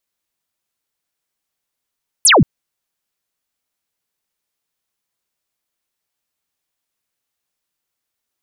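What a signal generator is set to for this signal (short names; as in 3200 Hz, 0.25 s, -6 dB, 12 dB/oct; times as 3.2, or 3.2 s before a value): laser zap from 12000 Hz, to 110 Hz, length 0.18 s sine, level -6 dB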